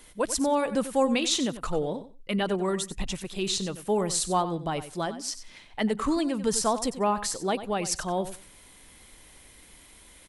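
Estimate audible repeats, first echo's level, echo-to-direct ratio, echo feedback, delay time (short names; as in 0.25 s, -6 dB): 2, -13.0 dB, -13.0 dB, 16%, 93 ms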